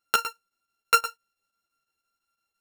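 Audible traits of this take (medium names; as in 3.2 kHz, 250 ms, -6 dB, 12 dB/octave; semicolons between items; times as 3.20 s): a buzz of ramps at a fixed pitch in blocks of 32 samples; chopped level 5.9 Hz, depth 60%, duty 85%; a shimmering, thickened sound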